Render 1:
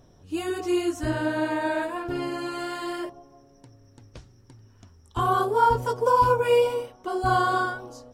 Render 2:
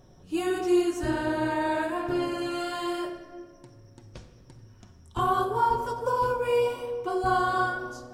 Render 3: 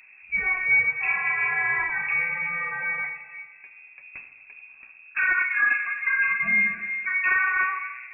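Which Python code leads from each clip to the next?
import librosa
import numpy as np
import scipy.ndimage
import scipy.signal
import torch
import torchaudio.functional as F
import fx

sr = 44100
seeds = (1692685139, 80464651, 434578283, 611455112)

y1 = fx.rider(x, sr, range_db=3, speed_s=0.5)
y1 = fx.room_shoebox(y1, sr, seeds[0], volume_m3=1800.0, walls='mixed', distance_m=1.0)
y1 = y1 * 10.0 ** (-3.5 / 20.0)
y2 = np.clip(y1, -10.0 ** (-18.0 / 20.0), 10.0 ** (-18.0 / 20.0))
y2 = fx.freq_invert(y2, sr, carrier_hz=2600)
y2 = y2 * 10.0 ** (2.5 / 20.0)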